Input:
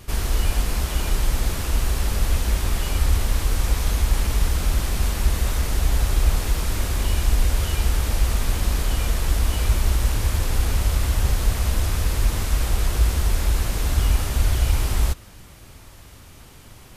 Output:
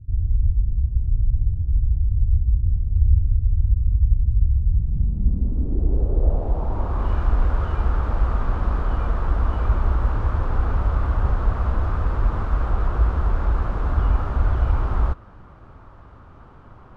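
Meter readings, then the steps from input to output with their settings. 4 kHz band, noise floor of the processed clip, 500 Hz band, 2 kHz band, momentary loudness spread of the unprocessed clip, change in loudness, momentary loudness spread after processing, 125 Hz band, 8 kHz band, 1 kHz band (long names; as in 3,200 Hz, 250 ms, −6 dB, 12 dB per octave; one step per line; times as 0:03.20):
−21.0 dB, −45 dBFS, −0.5 dB, −7.0 dB, 3 LU, +0.5 dB, 4 LU, +1.5 dB, below −30 dB, +1.5 dB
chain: parametric band 2,000 Hz −7 dB 0.98 octaves
low-pass filter sweep 100 Hz → 1,300 Hz, 0:04.62–0:07.11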